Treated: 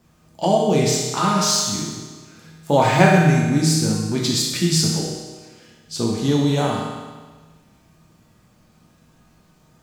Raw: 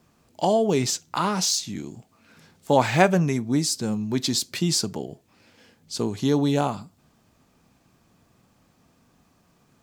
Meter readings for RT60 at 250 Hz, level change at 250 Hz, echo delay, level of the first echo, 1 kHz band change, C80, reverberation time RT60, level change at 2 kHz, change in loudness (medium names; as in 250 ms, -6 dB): 1.4 s, +5.0 dB, no echo, no echo, +4.5 dB, 3.0 dB, 1.4 s, +6.0 dB, +4.5 dB